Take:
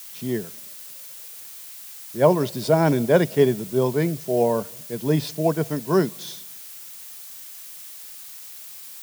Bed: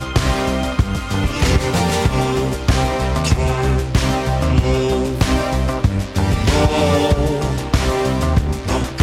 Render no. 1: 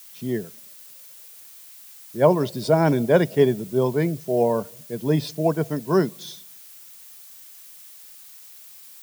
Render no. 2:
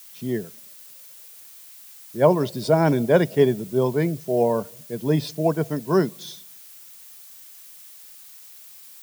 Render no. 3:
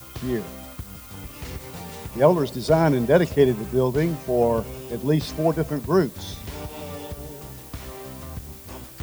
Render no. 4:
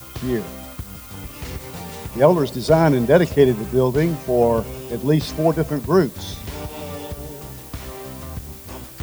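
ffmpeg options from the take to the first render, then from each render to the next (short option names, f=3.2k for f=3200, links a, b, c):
-af "afftdn=nr=6:nf=-40"
-af anull
-filter_complex "[1:a]volume=-20.5dB[a];[0:a][a]amix=inputs=2:normalize=0"
-af "volume=3.5dB,alimiter=limit=-2dB:level=0:latency=1"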